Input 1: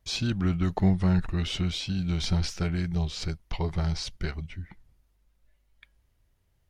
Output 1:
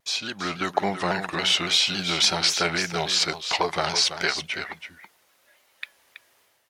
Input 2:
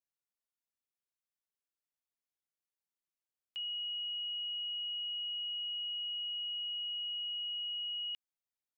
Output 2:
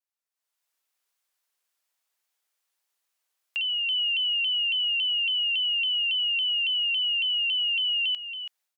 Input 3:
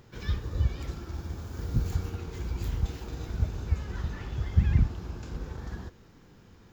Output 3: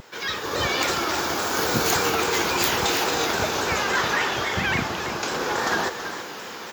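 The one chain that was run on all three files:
AGC gain up to 14 dB; HPF 600 Hz 12 dB/oct; echo 0.329 s -10.5 dB; in parallel at 0 dB: compressor, threshold -32 dBFS; on the sum: shaped vibrato saw down 3.6 Hz, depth 100 cents; match loudness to -23 LUFS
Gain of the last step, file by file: -0.5, -5.5, +8.0 dB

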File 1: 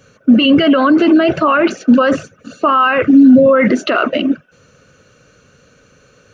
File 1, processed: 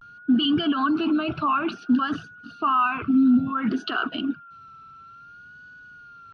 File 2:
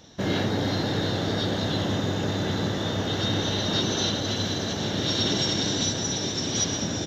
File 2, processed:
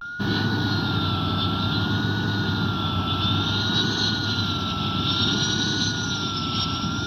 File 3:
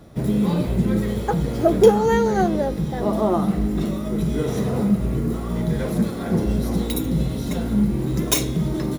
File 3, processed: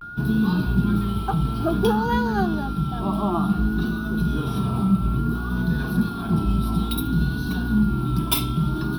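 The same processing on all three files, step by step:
whine 1400 Hz -34 dBFS; fixed phaser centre 2000 Hz, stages 6; vibrato 0.57 Hz 80 cents; match loudness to -23 LUFS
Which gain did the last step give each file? -8.5, +4.5, +1.0 dB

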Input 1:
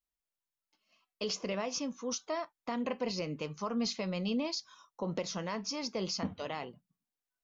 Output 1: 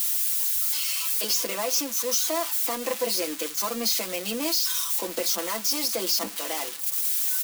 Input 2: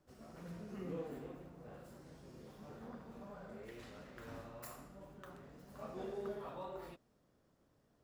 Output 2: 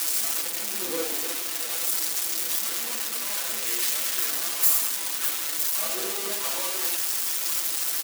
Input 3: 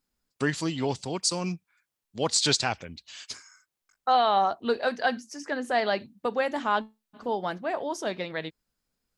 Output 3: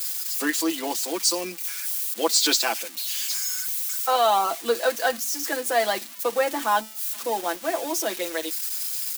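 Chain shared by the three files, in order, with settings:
switching spikes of -24 dBFS; steep high-pass 220 Hz 72 dB/oct; comb 6 ms, depth 70%; in parallel at -7.5 dB: sample gate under -37.5 dBFS; on the sum: match loudness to -24 LUFS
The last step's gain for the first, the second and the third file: +1.5, +6.0, -2.0 dB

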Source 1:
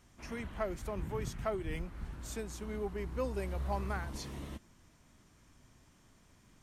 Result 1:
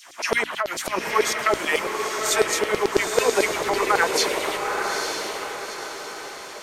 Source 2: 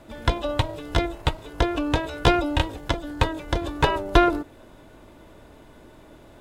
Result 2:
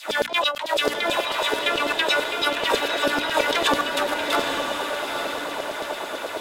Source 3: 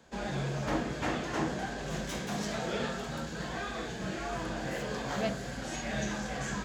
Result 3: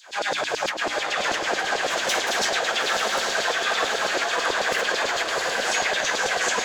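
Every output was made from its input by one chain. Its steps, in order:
LFO high-pass saw down 9.1 Hz 410–5100 Hz; negative-ratio compressor -37 dBFS, ratio -1; notches 60/120/180/240/300 Hz; diffused feedback echo 0.876 s, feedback 47%, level -4 dB; match loudness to -23 LUFS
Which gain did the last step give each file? +19.5, +10.0, +12.0 dB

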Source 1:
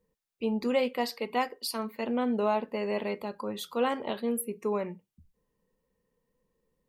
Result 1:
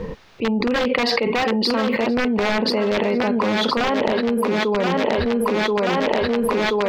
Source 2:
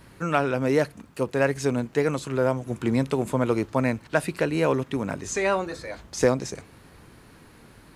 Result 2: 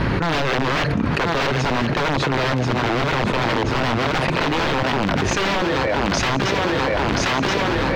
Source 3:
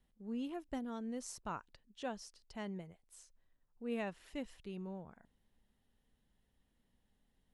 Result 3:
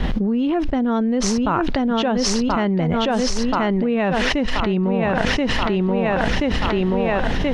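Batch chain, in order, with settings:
notch 7600 Hz, Q 12; wrapped overs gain 21 dB; air absorption 220 m; on a send: thinning echo 1.03 s, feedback 41%, high-pass 180 Hz, level -8.5 dB; on the sum: fast leveller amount 100%; match loudness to -20 LUFS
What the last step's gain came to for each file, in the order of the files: +7.0, +6.0, +17.5 dB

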